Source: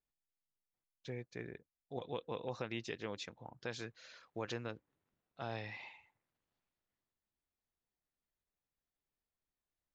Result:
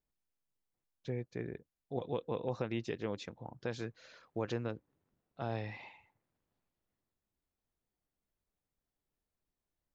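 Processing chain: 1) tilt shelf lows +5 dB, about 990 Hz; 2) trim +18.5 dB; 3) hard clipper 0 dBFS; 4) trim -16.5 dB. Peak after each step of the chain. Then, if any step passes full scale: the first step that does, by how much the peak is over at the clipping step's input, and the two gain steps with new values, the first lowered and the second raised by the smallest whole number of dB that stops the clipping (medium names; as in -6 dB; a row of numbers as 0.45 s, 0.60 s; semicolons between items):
-23.5 dBFS, -5.0 dBFS, -5.0 dBFS, -21.5 dBFS; nothing clips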